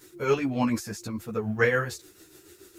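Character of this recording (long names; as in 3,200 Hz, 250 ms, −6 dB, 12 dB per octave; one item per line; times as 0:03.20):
tremolo triangle 6.9 Hz, depth 60%
a quantiser's noise floor 12 bits, dither triangular
a shimmering, thickened sound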